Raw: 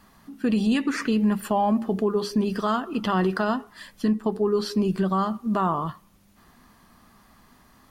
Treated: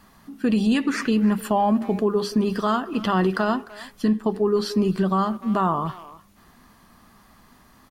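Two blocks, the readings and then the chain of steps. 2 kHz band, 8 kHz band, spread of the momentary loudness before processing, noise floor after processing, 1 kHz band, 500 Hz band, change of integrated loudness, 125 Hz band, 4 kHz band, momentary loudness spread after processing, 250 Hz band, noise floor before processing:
+2.0 dB, +2.0 dB, 5 LU, −54 dBFS, +2.0 dB, +2.0 dB, +2.0 dB, +2.0 dB, +2.0 dB, 6 LU, +2.0 dB, −57 dBFS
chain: far-end echo of a speakerphone 300 ms, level −16 dB
level +2 dB

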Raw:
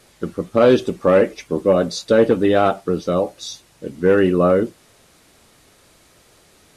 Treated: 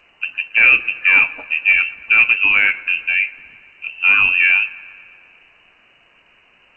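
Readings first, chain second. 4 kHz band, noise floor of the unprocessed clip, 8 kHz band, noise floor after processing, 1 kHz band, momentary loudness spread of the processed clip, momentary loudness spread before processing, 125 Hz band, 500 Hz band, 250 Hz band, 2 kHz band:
+4.5 dB, −54 dBFS, below −25 dB, −54 dBFS, −7.0 dB, 13 LU, 14 LU, below −20 dB, below −25 dB, below −20 dB, +19.0 dB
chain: voice inversion scrambler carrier 2,900 Hz
delay with a low-pass on its return 117 ms, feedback 70%, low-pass 2,200 Hz, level −19 dB
level +1 dB
G.722 64 kbit/s 16,000 Hz

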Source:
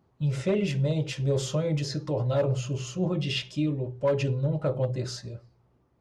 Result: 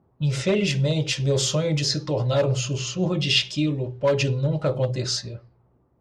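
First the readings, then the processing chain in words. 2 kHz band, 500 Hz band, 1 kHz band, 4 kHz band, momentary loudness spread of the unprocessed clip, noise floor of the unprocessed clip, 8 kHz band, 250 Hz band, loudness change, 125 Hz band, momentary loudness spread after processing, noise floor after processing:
+9.0 dB, +4.0 dB, +5.0 dB, +11.5 dB, 6 LU, −67 dBFS, +11.5 dB, +3.5 dB, +5.0 dB, +3.5 dB, 6 LU, −64 dBFS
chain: parametric band 4,900 Hz +9.5 dB 2.3 octaves
low-pass that shuts in the quiet parts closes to 950 Hz, open at −24 dBFS
level +3.5 dB

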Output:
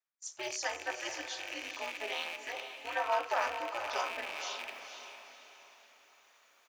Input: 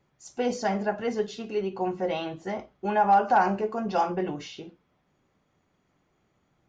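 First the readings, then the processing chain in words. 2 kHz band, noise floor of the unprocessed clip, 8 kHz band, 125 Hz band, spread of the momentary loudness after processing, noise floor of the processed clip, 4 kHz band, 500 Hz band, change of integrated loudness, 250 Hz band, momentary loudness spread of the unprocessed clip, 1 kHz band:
−1.0 dB, −72 dBFS, can't be measured, below −30 dB, 16 LU, −66 dBFS, +3.0 dB, −11.5 dB, −9.5 dB, −22.0 dB, 14 LU, −11.5 dB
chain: loose part that buzzes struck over −44 dBFS, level −29 dBFS
high-pass filter 1,200 Hz 12 dB per octave
noise gate −54 dBFS, range −25 dB
high-shelf EQ 5,800 Hz +9 dB
comb filter 1.7 ms, depth 60%
reversed playback
upward compression, threshold −37 dBFS
reversed playback
ring modulation 120 Hz
on a send: feedback delay with all-pass diffusion 479 ms, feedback 42%, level −8 dB

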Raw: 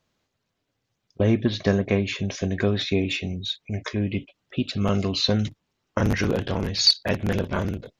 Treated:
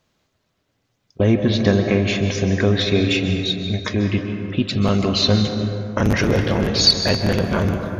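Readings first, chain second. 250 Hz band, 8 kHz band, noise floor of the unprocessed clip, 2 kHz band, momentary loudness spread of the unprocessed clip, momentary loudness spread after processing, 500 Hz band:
+6.0 dB, can't be measured, −78 dBFS, +6.0 dB, 10 LU, 7 LU, +6.0 dB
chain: in parallel at −2.5 dB: brickwall limiter −15.5 dBFS, peak gain reduction 10 dB
on the sum: dense smooth reverb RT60 2.8 s, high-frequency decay 0.4×, pre-delay 120 ms, DRR 5 dB
level +1 dB

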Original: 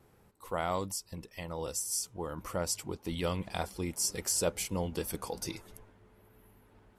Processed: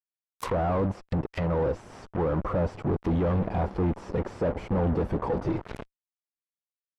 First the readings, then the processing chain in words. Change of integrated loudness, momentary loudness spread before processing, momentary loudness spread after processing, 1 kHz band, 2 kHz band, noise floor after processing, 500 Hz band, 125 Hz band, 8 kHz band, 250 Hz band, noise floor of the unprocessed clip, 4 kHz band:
+6.0 dB, 10 LU, 7 LU, +6.5 dB, +2.5 dB, below −85 dBFS, +8.5 dB, +12.5 dB, below −20 dB, +11.0 dB, −64 dBFS, −10.5 dB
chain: fuzz pedal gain 51 dB, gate −49 dBFS
treble cut that deepens with the level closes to 930 Hz, closed at −16 dBFS
level −9 dB

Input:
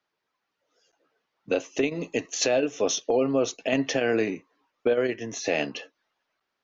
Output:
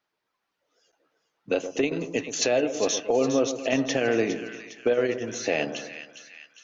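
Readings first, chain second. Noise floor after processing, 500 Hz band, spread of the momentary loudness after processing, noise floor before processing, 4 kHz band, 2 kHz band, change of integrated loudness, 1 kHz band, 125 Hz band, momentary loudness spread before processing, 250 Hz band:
−81 dBFS, +0.5 dB, 13 LU, −81 dBFS, +0.5 dB, +0.5 dB, +0.5 dB, +0.5 dB, +0.5 dB, 7 LU, +0.5 dB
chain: pitch vibrato 3.9 Hz 18 cents
echo with a time of its own for lows and highs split 1,300 Hz, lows 121 ms, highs 408 ms, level −10 dB

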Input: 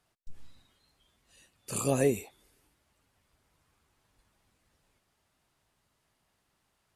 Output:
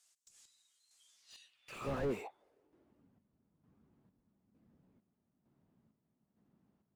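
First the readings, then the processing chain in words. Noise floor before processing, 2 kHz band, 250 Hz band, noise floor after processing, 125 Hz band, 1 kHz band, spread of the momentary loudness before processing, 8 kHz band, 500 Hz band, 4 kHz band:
−77 dBFS, −6.5 dB, −10.5 dB, −83 dBFS, −11.0 dB, −5.5 dB, 10 LU, −22.0 dB, −10.0 dB, −7.5 dB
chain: square-wave tremolo 1.1 Hz, depth 60%, duty 50%
band-pass filter sweep 7,200 Hz → 210 Hz, 0:01.06–0:03.08
slew-rate limiting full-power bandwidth 2.1 Hz
level +13.5 dB

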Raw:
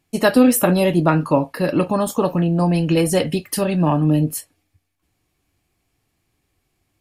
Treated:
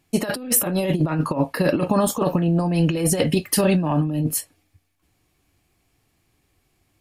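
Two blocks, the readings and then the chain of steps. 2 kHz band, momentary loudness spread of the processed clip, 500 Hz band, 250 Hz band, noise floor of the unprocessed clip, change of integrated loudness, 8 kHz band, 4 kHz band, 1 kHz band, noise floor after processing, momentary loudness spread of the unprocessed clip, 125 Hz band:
−4.5 dB, 5 LU, −4.0 dB, −4.0 dB, −72 dBFS, −3.0 dB, +3.0 dB, −1.5 dB, −5.0 dB, −68 dBFS, 7 LU, −2.5 dB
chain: compressor whose output falls as the input rises −19 dBFS, ratio −0.5

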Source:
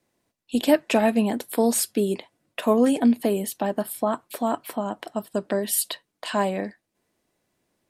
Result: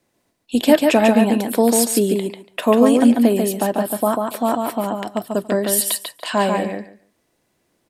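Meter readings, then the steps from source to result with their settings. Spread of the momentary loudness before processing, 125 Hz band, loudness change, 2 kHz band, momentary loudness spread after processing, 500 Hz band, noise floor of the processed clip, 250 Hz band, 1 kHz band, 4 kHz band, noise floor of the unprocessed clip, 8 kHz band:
11 LU, can't be measured, +6.5 dB, +6.5 dB, 11 LU, +6.5 dB, −68 dBFS, +6.5 dB, +6.5 dB, +6.5 dB, −79 dBFS, +6.5 dB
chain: repeating echo 143 ms, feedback 15%, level −4 dB
level +5 dB

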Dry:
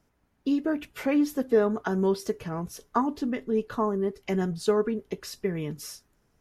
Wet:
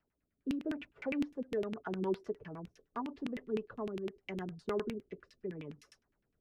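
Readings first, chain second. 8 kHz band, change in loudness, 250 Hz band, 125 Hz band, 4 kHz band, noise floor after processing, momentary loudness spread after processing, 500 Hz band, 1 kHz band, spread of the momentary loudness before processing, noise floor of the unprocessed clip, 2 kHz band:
below −20 dB, −11.5 dB, −11.5 dB, −12.5 dB, −11.0 dB, −84 dBFS, 10 LU, −12.0 dB, −13.5 dB, 11 LU, −70 dBFS, −9.5 dB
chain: rotating-speaker cabinet horn 0.8 Hz
auto-filter low-pass saw down 9.8 Hz 220–2,800 Hz
first-order pre-emphasis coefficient 0.8
level +1 dB

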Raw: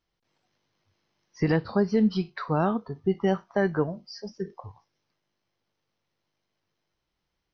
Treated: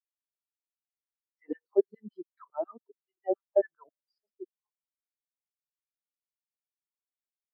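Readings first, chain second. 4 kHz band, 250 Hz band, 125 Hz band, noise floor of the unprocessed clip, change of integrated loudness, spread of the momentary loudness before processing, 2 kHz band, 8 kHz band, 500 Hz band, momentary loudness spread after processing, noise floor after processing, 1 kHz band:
below −35 dB, −15.0 dB, below −30 dB, −81 dBFS, −5.5 dB, 14 LU, −21.0 dB, can't be measured, −3.0 dB, 21 LU, below −85 dBFS, −12.5 dB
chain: auto-filter high-pass saw down 7.2 Hz 280–3,800 Hz
every bin expanded away from the loudest bin 2.5 to 1
level −3 dB

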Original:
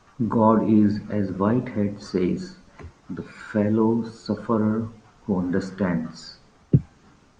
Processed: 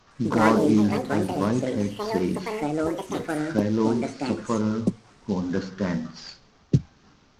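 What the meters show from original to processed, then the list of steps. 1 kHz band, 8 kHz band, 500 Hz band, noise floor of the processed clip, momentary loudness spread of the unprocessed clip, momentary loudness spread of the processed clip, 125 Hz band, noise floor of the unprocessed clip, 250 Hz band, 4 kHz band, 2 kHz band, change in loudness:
0.0 dB, can't be measured, 0.0 dB, −58 dBFS, 18 LU, 10 LU, −2.5 dB, −57 dBFS, −1.5 dB, +4.5 dB, +4.0 dB, −1.5 dB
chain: variable-slope delta modulation 32 kbit/s
high-shelf EQ 4,900 Hz +5.5 dB
delay with pitch and tempo change per echo 108 ms, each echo +6 semitones, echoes 2
level −2.5 dB

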